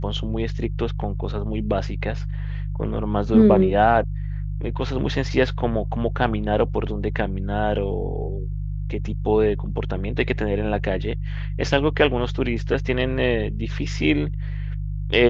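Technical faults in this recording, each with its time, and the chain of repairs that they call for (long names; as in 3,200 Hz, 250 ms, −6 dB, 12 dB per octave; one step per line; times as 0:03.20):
mains hum 50 Hz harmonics 3 −27 dBFS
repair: hum removal 50 Hz, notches 3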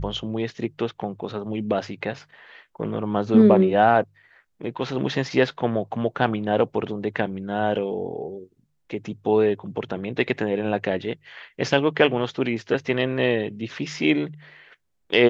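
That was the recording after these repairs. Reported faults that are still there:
none of them is left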